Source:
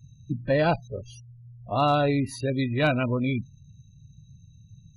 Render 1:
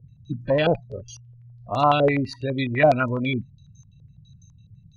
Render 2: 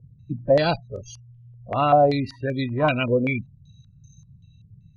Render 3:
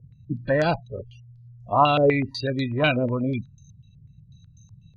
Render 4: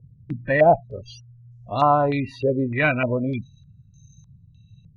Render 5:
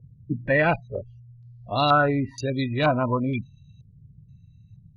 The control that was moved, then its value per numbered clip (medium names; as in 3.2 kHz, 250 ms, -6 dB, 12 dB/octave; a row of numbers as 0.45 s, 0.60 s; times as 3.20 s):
step-sequenced low-pass, rate: 12 Hz, 5.2 Hz, 8.1 Hz, 3.3 Hz, 2.1 Hz